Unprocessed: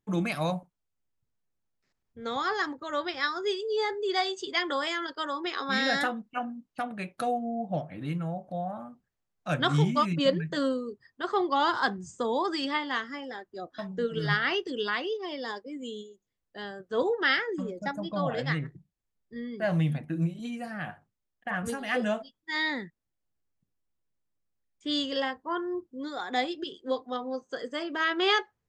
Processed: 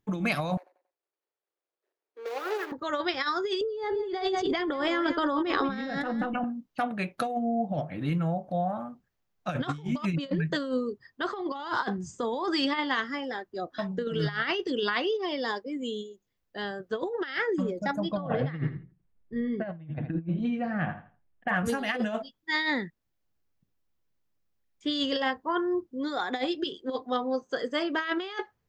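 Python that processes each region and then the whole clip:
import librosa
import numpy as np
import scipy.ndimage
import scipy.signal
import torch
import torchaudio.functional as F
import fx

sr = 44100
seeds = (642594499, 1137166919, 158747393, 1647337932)

y = fx.chain(x, sr, fx.median_filter(points=41),
    fx.steep_highpass(hz=350.0, slope=48),
    fx.echo_feedback(ms=92, feedback_pct=36, wet_db=-13.5), at=(0.57, 2.72))
y = fx.chain(y, sr, fx.tilt_eq(slope=-3.5),
    fx.echo_single(ms=181, db=-15.0),
    fx.over_compress(threshold_db=-34.0, ratio=-1.0), at=(3.61, 6.44))
y = fx.chain(y, sr, fx.lowpass(hz=2800.0, slope=12),
    fx.tilt_eq(slope=-1.5),
    fx.echo_feedback(ms=82, feedback_pct=26, wet_db=-12.0), at=(18.17, 21.48))
y = fx.peak_eq(y, sr, hz=8800.0, db=-7.5, octaves=0.65)
y = fx.over_compress(y, sr, threshold_db=-30.0, ratio=-0.5)
y = y * 10.0 ** (2.5 / 20.0)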